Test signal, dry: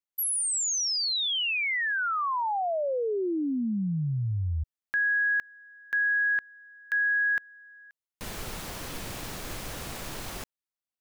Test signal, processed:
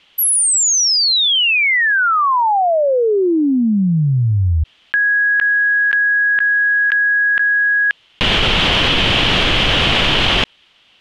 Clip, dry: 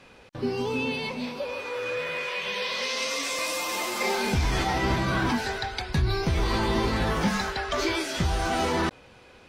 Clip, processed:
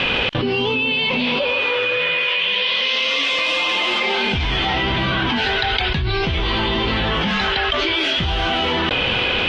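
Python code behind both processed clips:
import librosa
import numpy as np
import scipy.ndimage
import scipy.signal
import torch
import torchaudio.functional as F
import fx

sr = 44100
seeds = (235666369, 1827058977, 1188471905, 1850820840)

y = fx.lowpass_res(x, sr, hz=3100.0, q=5.0)
y = fx.env_flatten(y, sr, amount_pct=100)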